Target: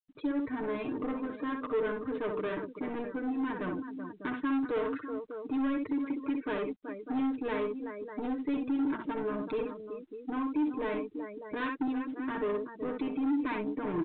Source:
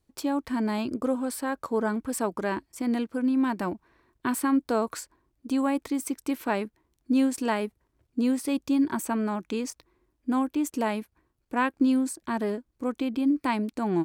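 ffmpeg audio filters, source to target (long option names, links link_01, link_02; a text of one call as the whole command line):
ffmpeg -i in.wav -filter_complex "[0:a]highpass=frequency=60:poles=1,asplit=2[link_01][link_02];[link_02]acompressor=threshold=-34dB:ratio=16,volume=-0.5dB[link_03];[link_01][link_03]amix=inputs=2:normalize=0,equalizer=frequency=100:width_type=o:width=0.33:gain=8,equalizer=frequency=400:width_type=o:width=0.33:gain=7,equalizer=frequency=800:width_type=o:width=0.33:gain=-11,equalizer=frequency=3150:width_type=o:width=0.33:gain=-10,asplit=2[link_04][link_05];[link_05]aecho=0:1:63|379|599:0.531|0.266|0.2[link_06];[link_04][link_06]amix=inputs=2:normalize=0,afftfilt=real='re*gte(hypot(re,im),0.0126)':imag='im*gte(hypot(re,im),0.0126)':win_size=1024:overlap=0.75,asoftclip=type=tanh:threshold=-22.5dB,aemphasis=mode=production:type=cd,aecho=1:1:6.6:0.76,volume=-6.5dB" -ar 8000 -c:a pcm_mulaw out.wav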